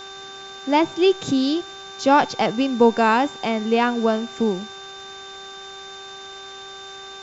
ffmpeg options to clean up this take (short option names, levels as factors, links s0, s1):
-af "adeclick=t=4,bandreject=f=389.7:t=h:w=4,bandreject=f=779.4:t=h:w=4,bandreject=f=1169.1:t=h:w=4,bandreject=f=1558.8:t=h:w=4,bandreject=f=3600:w=30,afftdn=nr=27:nf=-38"